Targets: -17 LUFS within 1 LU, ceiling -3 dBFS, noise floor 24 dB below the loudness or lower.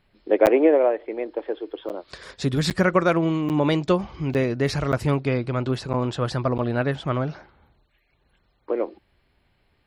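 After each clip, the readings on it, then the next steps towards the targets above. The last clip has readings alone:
dropouts 8; longest dropout 8.7 ms; loudness -23.5 LUFS; peak -4.0 dBFS; loudness target -17.0 LUFS
-> interpolate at 0.46/1.89/2.7/3.49/4.34/4.92/5.93/6.58, 8.7 ms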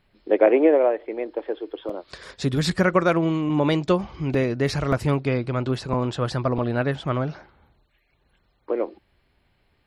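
dropouts 0; loudness -23.0 LUFS; peak -4.0 dBFS; loudness target -17.0 LUFS
-> gain +6 dB; limiter -3 dBFS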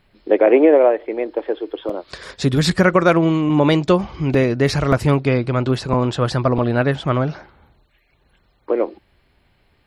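loudness -17.5 LUFS; peak -3.0 dBFS; noise floor -61 dBFS

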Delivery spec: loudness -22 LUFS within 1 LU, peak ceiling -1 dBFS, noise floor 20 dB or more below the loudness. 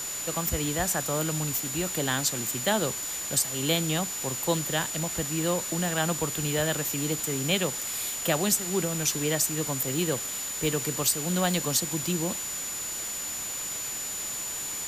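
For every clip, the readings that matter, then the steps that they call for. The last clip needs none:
steady tone 7000 Hz; tone level -33 dBFS; noise floor -34 dBFS; noise floor target -47 dBFS; loudness -27.0 LUFS; peak -10.5 dBFS; loudness target -22.0 LUFS
-> notch 7000 Hz, Q 30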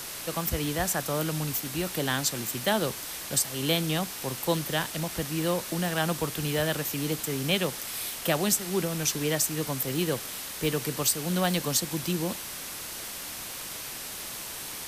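steady tone none; noise floor -38 dBFS; noise floor target -49 dBFS
-> denoiser 11 dB, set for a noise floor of -38 dBFS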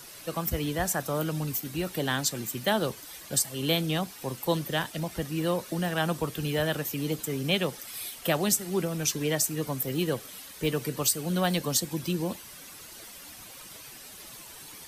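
noise floor -46 dBFS; noise floor target -49 dBFS
-> denoiser 6 dB, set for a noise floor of -46 dBFS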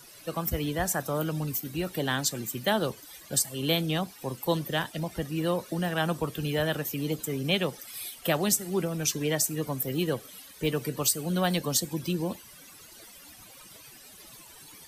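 noise floor -50 dBFS; loudness -29.0 LUFS; peak -10.0 dBFS; loudness target -22.0 LUFS
-> gain +7 dB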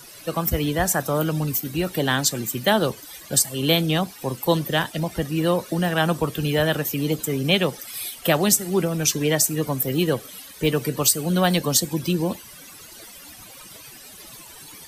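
loudness -22.0 LUFS; peak -3.0 dBFS; noise floor -43 dBFS

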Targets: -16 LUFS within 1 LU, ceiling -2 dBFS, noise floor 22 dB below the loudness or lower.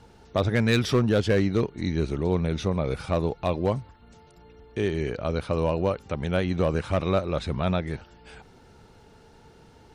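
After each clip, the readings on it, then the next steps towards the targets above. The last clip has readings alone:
clipped 0.4%; flat tops at -14.5 dBFS; loudness -26.0 LUFS; peak -14.5 dBFS; loudness target -16.0 LUFS
-> clip repair -14.5 dBFS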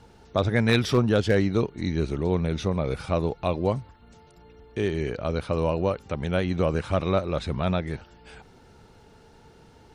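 clipped 0.0%; loudness -26.0 LUFS; peak -7.5 dBFS; loudness target -16.0 LUFS
-> gain +10 dB; limiter -2 dBFS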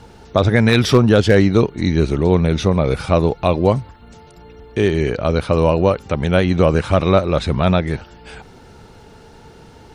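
loudness -16.5 LUFS; peak -2.0 dBFS; noise floor -44 dBFS

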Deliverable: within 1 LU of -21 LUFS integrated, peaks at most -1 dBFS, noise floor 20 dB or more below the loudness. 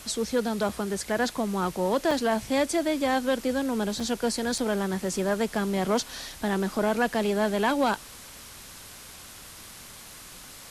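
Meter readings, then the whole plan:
dropouts 4; longest dropout 4.0 ms; noise floor -46 dBFS; noise floor target -47 dBFS; loudness -27.0 LUFS; peak -14.5 dBFS; loudness target -21.0 LUFS
-> interpolate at 0.69/2.11/4/4.58, 4 ms; denoiser 6 dB, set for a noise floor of -46 dBFS; gain +6 dB

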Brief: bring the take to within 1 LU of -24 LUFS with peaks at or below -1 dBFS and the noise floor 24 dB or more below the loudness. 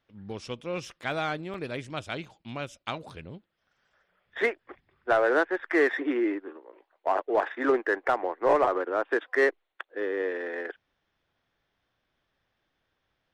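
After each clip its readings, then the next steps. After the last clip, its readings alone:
dropouts 1; longest dropout 1.2 ms; loudness -28.5 LUFS; peak -13.0 dBFS; loudness target -24.0 LUFS
-> interpolate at 1.54, 1.2 ms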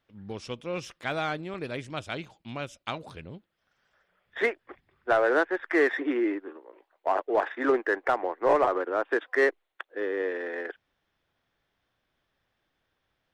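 dropouts 0; loudness -28.5 LUFS; peak -13.0 dBFS; loudness target -24.0 LUFS
-> gain +4.5 dB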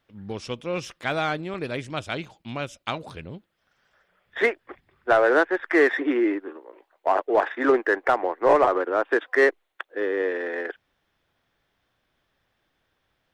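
loudness -24.0 LUFS; peak -8.5 dBFS; noise floor -74 dBFS

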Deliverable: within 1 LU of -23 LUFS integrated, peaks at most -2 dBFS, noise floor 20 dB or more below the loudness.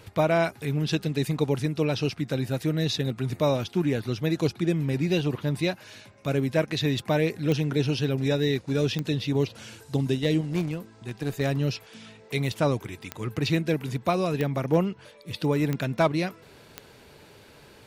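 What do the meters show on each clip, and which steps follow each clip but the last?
clicks 6; loudness -27.0 LUFS; peak -7.5 dBFS; loudness target -23.0 LUFS
-> de-click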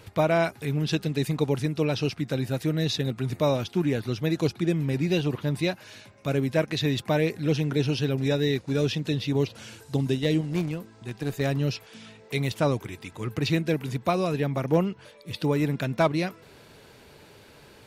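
clicks 0; loudness -27.0 LUFS; peak -10.5 dBFS; loudness target -23.0 LUFS
-> gain +4 dB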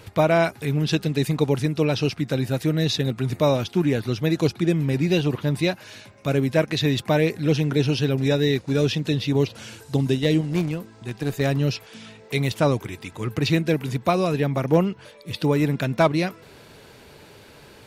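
loudness -23.0 LUFS; peak -6.5 dBFS; noise floor -48 dBFS

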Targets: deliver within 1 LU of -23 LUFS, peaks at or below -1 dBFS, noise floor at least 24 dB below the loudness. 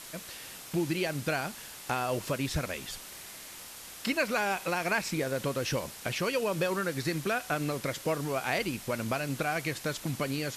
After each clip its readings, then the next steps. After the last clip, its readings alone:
noise floor -46 dBFS; noise floor target -56 dBFS; loudness -32.0 LUFS; peak -15.5 dBFS; loudness target -23.0 LUFS
-> denoiser 10 dB, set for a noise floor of -46 dBFS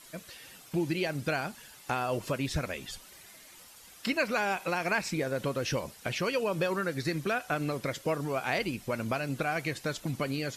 noise floor -53 dBFS; noise floor target -56 dBFS
-> denoiser 6 dB, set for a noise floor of -53 dBFS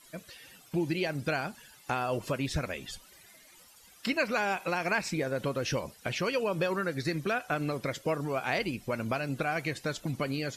noise floor -57 dBFS; loudness -32.0 LUFS; peak -16.0 dBFS; loudness target -23.0 LUFS
-> gain +9 dB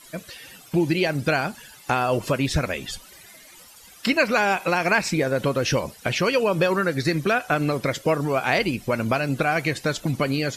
loudness -23.0 LUFS; peak -7.0 dBFS; noise floor -48 dBFS

